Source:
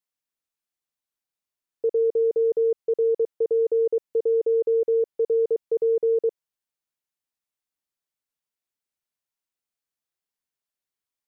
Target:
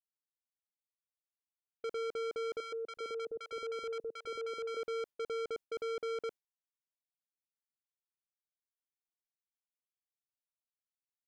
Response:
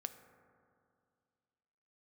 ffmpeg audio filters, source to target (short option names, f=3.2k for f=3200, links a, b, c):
-filter_complex "[0:a]agate=range=-33dB:threshold=-28dB:ratio=3:detection=peak,asoftclip=type=tanh:threshold=-35dB,asettb=1/sr,asplit=3[a][b][c];[a]atrim=end=2.604[d];[b]atrim=start=2.6:end=4.77,asetpts=PTS-STARTPTS,afade=t=in:d=0.004:c=qsin,afade=t=out:st=2.166:d=0.004:c=qsin,acrossover=split=160|700[e][f][g];[f]adelay=120[h];[e]adelay=370[i];[i][h][g]amix=inputs=3:normalize=0,atrim=end_sample=95697[j];[c]atrim=start=4.766[k];[d][j]acrossfade=d=0.004:c1=hsin:c2=qsin[l];[l][k]acrossfade=d=0.004:c1=qsin:c2=hsin,volume=-1dB"